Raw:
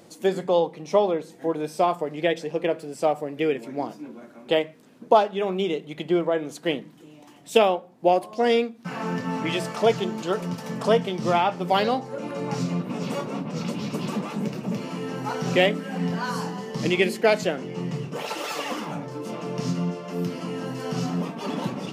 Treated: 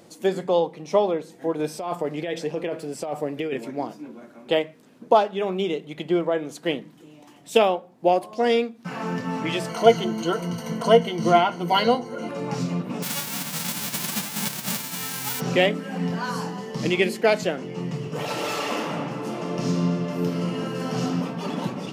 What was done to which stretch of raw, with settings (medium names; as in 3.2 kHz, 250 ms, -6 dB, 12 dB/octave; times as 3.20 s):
1.59–3.71 s: compressor with a negative ratio -26 dBFS
9.69–12.29 s: rippled EQ curve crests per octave 1.9, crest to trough 15 dB
13.02–15.39 s: formants flattened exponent 0.1
17.96–21.04 s: reverb throw, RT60 2.3 s, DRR 0 dB